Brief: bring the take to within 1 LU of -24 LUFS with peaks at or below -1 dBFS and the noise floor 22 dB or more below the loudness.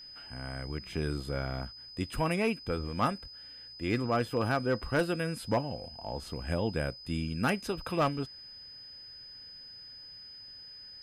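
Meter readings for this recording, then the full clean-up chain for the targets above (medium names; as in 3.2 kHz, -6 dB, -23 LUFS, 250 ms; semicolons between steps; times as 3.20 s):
clipped samples 0.3%; clipping level -20.5 dBFS; steady tone 5 kHz; tone level -46 dBFS; loudness -33.0 LUFS; peak level -20.5 dBFS; loudness target -24.0 LUFS
-> clip repair -20.5 dBFS; band-stop 5 kHz, Q 30; trim +9 dB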